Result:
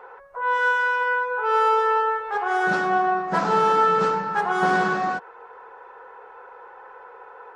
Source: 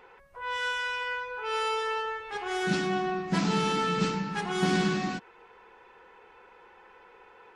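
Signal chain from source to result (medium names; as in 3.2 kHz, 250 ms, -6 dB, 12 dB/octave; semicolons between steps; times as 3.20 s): high-order bell 840 Hz +16 dB 2.3 oct; trim -4 dB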